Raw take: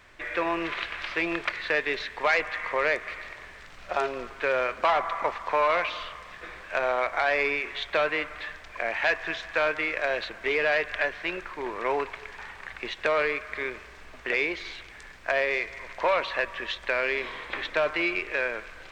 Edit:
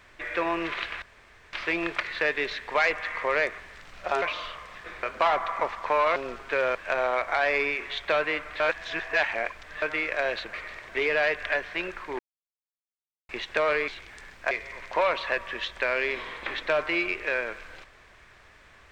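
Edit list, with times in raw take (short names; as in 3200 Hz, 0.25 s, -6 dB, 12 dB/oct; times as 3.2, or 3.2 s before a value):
1.02 insert room tone 0.51 s
3.07–3.43 move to 10.38
4.07–4.66 swap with 5.79–6.6
8.45–9.67 reverse
11.68–12.78 mute
13.37–14.7 cut
15.33–15.58 cut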